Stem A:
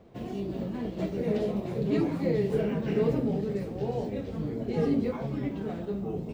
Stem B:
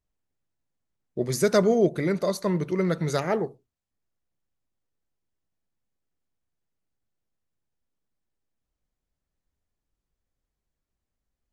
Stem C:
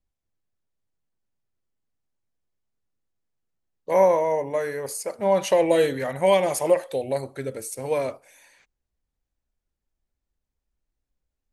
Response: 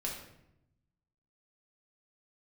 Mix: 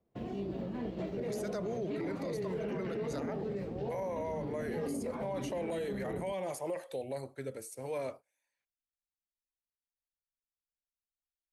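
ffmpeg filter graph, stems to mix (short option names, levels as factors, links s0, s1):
-filter_complex "[0:a]lowpass=f=3400:p=1,volume=0.75[s0];[1:a]volume=0.316[s1];[2:a]volume=0.335[s2];[s0][s1][s2]amix=inputs=3:normalize=0,agate=range=0.0891:threshold=0.00355:ratio=16:detection=peak,acrossover=split=330|1200[s3][s4][s5];[s3]acompressor=threshold=0.0126:ratio=4[s6];[s4]acompressor=threshold=0.0282:ratio=4[s7];[s5]acompressor=threshold=0.00562:ratio=4[s8];[s6][s7][s8]amix=inputs=3:normalize=0,alimiter=level_in=1.78:limit=0.0631:level=0:latency=1:release=23,volume=0.562"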